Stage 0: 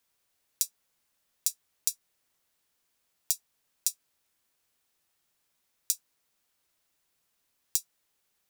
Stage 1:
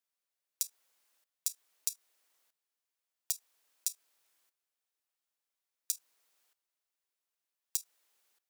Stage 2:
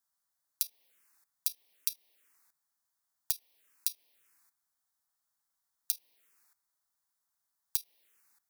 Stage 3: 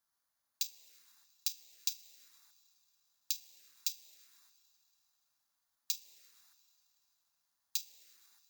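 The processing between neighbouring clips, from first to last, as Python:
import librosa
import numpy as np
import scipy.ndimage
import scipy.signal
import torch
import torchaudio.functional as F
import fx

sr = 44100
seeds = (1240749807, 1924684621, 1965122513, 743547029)

y1 = scipy.signal.sosfilt(scipy.signal.butter(2, 380.0, 'highpass', fs=sr, output='sos'), x)
y1 = fx.transient(y1, sr, attack_db=-4, sustain_db=7)
y1 = fx.level_steps(y1, sr, step_db=15)
y2 = fx.env_phaser(y1, sr, low_hz=450.0, high_hz=1400.0, full_db=-45.5)
y2 = y2 * librosa.db_to_amplitude(6.5)
y3 = fx.rev_double_slope(y2, sr, seeds[0], early_s=0.21, late_s=3.3, knee_db=-18, drr_db=11.0)
y3 = (np.kron(scipy.signal.resample_poly(y3, 1, 4), np.eye(4)[0]) * 4)[:len(y3)]
y3 = y3 * librosa.db_to_amplitude(2.0)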